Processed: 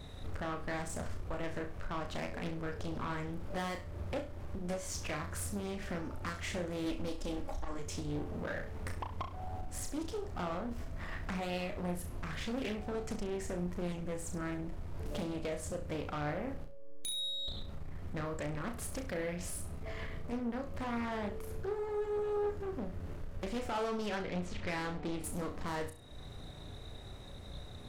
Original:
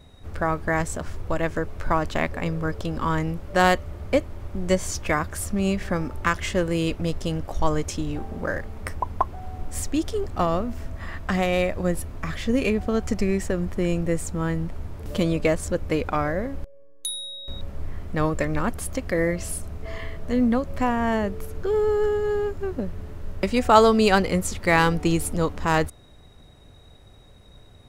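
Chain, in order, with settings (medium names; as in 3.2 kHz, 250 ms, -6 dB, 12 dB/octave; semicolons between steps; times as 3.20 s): 6.86–7.79 s: comb 3.6 ms, depth 77%; 24.06–25.24 s: Chebyshev low-pass 3.1 kHz, order 2; compression 2.5:1, threshold -40 dBFS, peak gain reduction 20 dB; saturation -34 dBFS, distortion -12 dB; flutter echo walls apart 5.8 m, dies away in 0.35 s; loudspeaker Doppler distortion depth 0.53 ms; trim +1.5 dB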